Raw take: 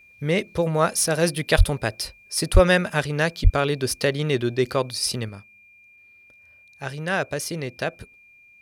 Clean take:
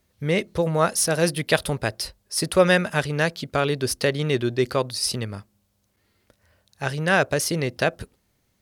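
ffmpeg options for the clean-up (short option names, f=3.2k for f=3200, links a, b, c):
-filter_complex "[0:a]bandreject=f=2.4k:w=30,asplit=3[a][b][c];[a]afade=t=out:st=1.57:d=0.02[d];[b]highpass=f=140:w=0.5412,highpass=f=140:w=1.3066,afade=t=in:st=1.57:d=0.02,afade=t=out:st=1.69:d=0.02[e];[c]afade=t=in:st=1.69:d=0.02[f];[d][e][f]amix=inputs=3:normalize=0,asplit=3[g][h][i];[g]afade=t=out:st=2.53:d=0.02[j];[h]highpass=f=140:w=0.5412,highpass=f=140:w=1.3066,afade=t=in:st=2.53:d=0.02,afade=t=out:st=2.65:d=0.02[k];[i]afade=t=in:st=2.65:d=0.02[l];[j][k][l]amix=inputs=3:normalize=0,asplit=3[m][n][o];[m]afade=t=out:st=3.43:d=0.02[p];[n]highpass=f=140:w=0.5412,highpass=f=140:w=1.3066,afade=t=in:st=3.43:d=0.02,afade=t=out:st=3.55:d=0.02[q];[o]afade=t=in:st=3.55:d=0.02[r];[p][q][r]amix=inputs=3:normalize=0,asetnsamples=n=441:p=0,asendcmd='5.29 volume volume 5dB',volume=0dB"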